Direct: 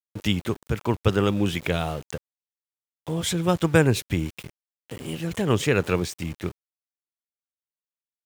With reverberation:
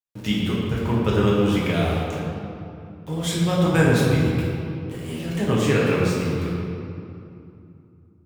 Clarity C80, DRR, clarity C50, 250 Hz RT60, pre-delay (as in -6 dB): 0.0 dB, -6.5 dB, -1.5 dB, 3.5 s, 6 ms